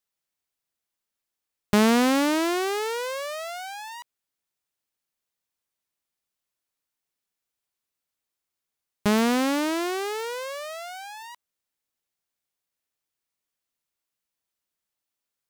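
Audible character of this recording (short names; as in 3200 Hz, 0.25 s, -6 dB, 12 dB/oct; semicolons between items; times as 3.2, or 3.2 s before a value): noise floor -86 dBFS; spectral tilt -4.0 dB/oct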